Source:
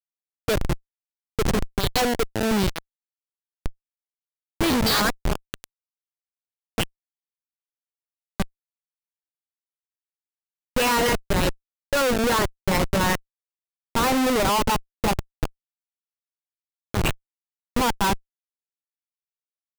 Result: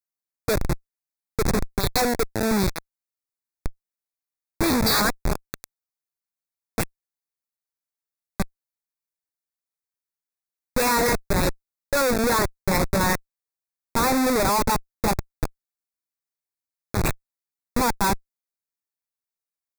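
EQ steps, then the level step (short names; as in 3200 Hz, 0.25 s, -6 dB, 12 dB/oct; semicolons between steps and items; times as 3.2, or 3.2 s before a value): Butterworth band-stop 3000 Hz, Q 2.7; high shelf 9500 Hz +5 dB; 0.0 dB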